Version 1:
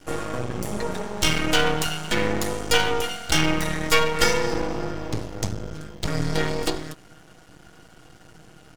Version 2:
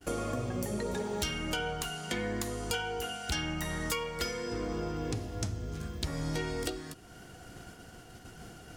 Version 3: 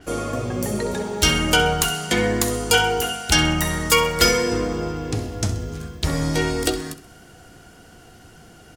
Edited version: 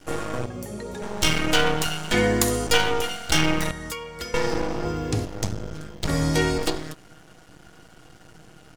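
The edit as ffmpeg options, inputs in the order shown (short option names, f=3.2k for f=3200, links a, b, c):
-filter_complex "[1:a]asplit=2[a][b];[2:a]asplit=3[c][d][e];[0:a]asplit=6[f][g][h][i][j][k];[f]atrim=end=0.462[l];[a]atrim=start=0.458:end=1.022[m];[g]atrim=start=1.018:end=2.142[n];[c]atrim=start=2.138:end=2.672[o];[h]atrim=start=2.668:end=3.712[p];[b]atrim=start=3.708:end=4.342[q];[i]atrim=start=4.338:end=4.852[r];[d]atrim=start=4.848:end=5.252[s];[j]atrim=start=5.248:end=6.092[t];[e]atrim=start=6.088:end=6.582[u];[k]atrim=start=6.578[v];[l][m]acrossfade=d=0.004:c1=hsin:c2=hsin[w];[w][n]acrossfade=d=0.004:c1=hsin:c2=hsin[x];[x][o]acrossfade=d=0.004:c1=hsin:c2=hsin[y];[y][p]acrossfade=d=0.004:c1=hsin:c2=hsin[z];[z][q]acrossfade=d=0.004:c1=hsin:c2=hsin[aa];[aa][r]acrossfade=d=0.004:c1=hsin:c2=hsin[ab];[ab][s]acrossfade=d=0.004:c1=hsin:c2=hsin[ac];[ac][t]acrossfade=d=0.004:c1=hsin:c2=hsin[ad];[ad][u]acrossfade=d=0.004:c1=hsin:c2=hsin[ae];[ae][v]acrossfade=d=0.004:c1=hsin:c2=hsin"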